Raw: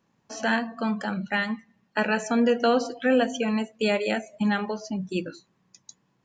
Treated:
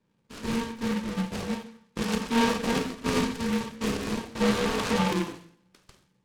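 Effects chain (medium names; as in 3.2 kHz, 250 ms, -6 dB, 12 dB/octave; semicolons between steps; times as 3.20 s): bit-reversed sample order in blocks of 64 samples; on a send at -1 dB: reverberation RT60 0.60 s, pre-delay 3 ms; 4.35–5.14 s: on the sum: overdrive pedal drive 36 dB, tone 1.7 kHz, clips at -10 dBFS; in parallel at -10 dB: decimation with a swept rate 36×, swing 160% 0.36 Hz; on the sum: steep low-pass 4.3 kHz 96 dB/octave; delay time shaken by noise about 1.7 kHz, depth 0.091 ms; trim -3 dB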